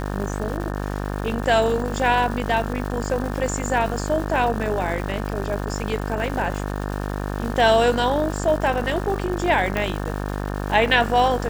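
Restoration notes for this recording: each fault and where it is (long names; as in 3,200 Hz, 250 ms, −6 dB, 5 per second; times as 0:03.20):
mains buzz 50 Hz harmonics 36 −27 dBFS
surface crackle 520 per second −31 dBFS
0:09.77: click −10 dBFS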